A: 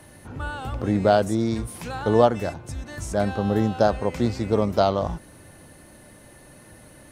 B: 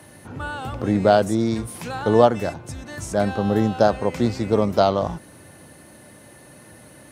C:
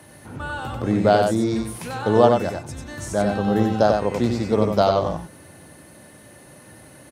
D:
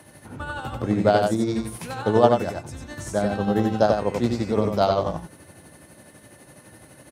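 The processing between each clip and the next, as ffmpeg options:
-af "highpass=91,volume=1.33"
-af "aecho=1:1:94:0.596,volume=0.891"
-af "tremolo=f=12:d=0.48"

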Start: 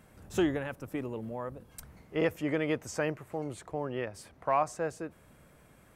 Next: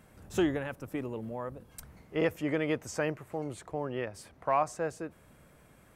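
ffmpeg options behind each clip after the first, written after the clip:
-af anull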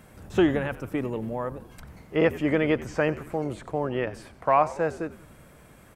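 -filter_complex "[0:a]acrossover=split=3800[s0][s1];[s1]acompressor=threshold=0.00112:ratio=4:attack=1:release=60[s2];[s0][s2]amix=inputs=2:normalize=0,asplit=6[s3][s4][s5][s6][s7][s8];[s4]adelay=91,afreqshift=-83,volume=0.141[s9];[s5]adelay=182,afreqshift=-166,volume=0.0759[s10];[s6]adelay=273,afreqshift=-249,volume=0.0412[s11];[s7]adelay=364,afreqshift=-332,volume=0.0221[s12];[s8]adelay=455,afreqshift=-415,volume=0.012[s13];[s3][s9][s10][s11][s12][s13]amix=inputs=6:normalize=0,volume=2.24"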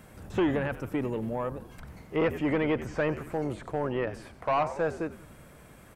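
-filter_complex "[0:a]acrossover=split=2500[s0][s1];[s0]asoftclip=type=tanh:threshold=0.0891[s2];[s2][s1]amix=inputs=2:normalize=0,acrossover=split=2900[s3][s4];[s4]acompressor=threshold=0.00251:ratio=4:attack=1:release=60[s5];[s3][s5]amix=inputs=2:normalize=0"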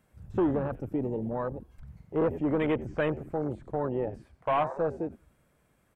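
-af "afwtdn=0.0251"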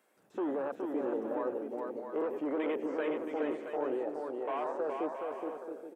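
-af "highpass=f=310:w=0.5412,highpass=f=310:w=1.3066,alimiter=level_in=1.5:limit=0.0631:level=0:latency=1:release=14,volume=0.668,aecho=1:1:420|672|823.2|913.9|968.4:0.631|0.398|0.251|0.158|0.1"

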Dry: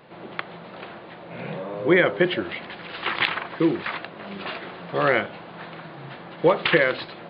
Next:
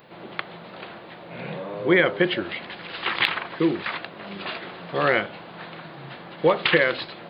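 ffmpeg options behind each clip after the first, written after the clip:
-af "aemphasis=mode=production:type=50kf,volume=0.891"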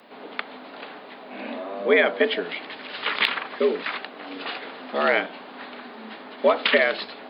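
-af "afreqshift=83"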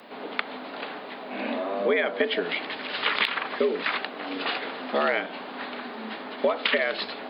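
-af "acompressor=threshold=0.0631:ratio=6,volume=1.5"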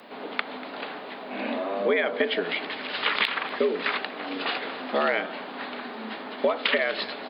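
-af "aecho=1:1:240:0.133"

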